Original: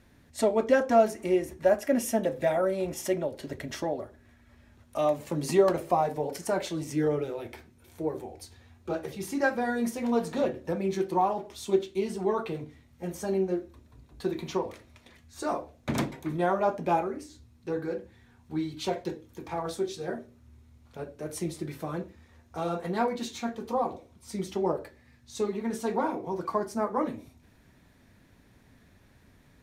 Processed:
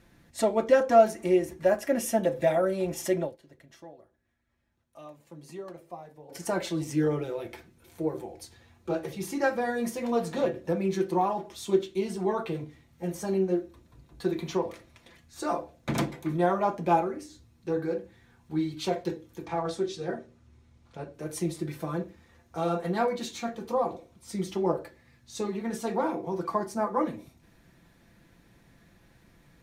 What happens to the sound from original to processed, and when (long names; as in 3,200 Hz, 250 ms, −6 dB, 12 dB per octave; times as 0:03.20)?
0:03.23–0:06.42: duck −18 dB, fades 0.14 s
0:19.45–0:21.14: low-pass filter 7,900 Hz
whole clip: comb filter 5.9 ms, depth 44%